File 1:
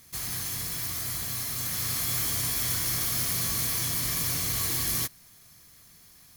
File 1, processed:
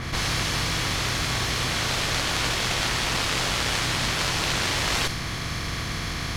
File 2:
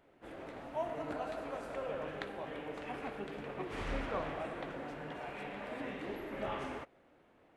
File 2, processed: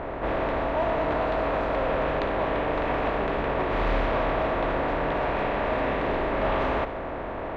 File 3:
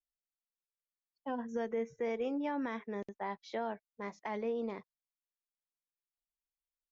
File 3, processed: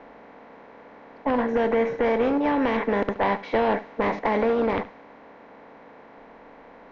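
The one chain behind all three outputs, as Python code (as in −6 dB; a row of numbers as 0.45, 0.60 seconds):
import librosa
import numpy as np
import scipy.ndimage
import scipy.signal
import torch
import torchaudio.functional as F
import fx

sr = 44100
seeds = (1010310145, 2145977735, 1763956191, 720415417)

p1 = fx.bin_compress(x, sr, power=0.4)
p2 = fx.cheby_harmonics(p1, sr, harmonics=(2, 3, 7), levels_db=(-8, -9, -18), full_scale_db=-10.0)
p3 = fx.low_shelf(p2, sr, hz=83.0, db=8.5)
p4 = p3 + 10.0 ** (-16.5 / 20.0) * np.pad(p3, (int(72 * sr / 1000.0), 0))[:len(p3)]
p5 = fx.rider(p4, sr, range_db=3, speed_s=0.5)
p6 = p4 + (p5 * 10.0 ** (-0.5 / 20.0))
p7 = fx.low_shelf(p6, sr, hz=460.0, db=-3.0)
p8 = fx.env_lowpass(p7, sr, base_hz=1600.0, full_db=-15.0)
y = p8 * 10.0 ** (-26 / 20.0) / np.sqrt(np.mean(np.square(p8)))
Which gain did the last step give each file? +6.5, +4.5, +8.0 decibels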